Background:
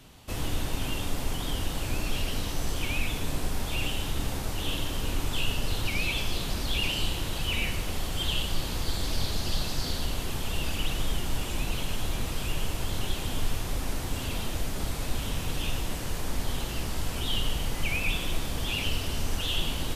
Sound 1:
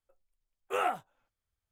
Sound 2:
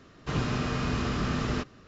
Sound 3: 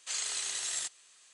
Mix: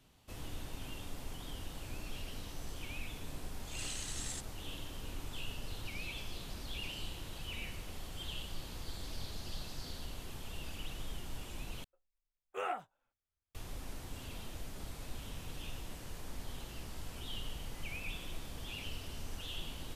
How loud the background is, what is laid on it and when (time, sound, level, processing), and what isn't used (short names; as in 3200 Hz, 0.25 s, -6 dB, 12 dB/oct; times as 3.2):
background -14 dB
3.53 add 3 -8.5 dB + attack slew limiter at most 110 dB/s
11.84 replace with 1 -7.5 dB + bell 12000 Hz -9.5 dB 0.66 oct
not used: 2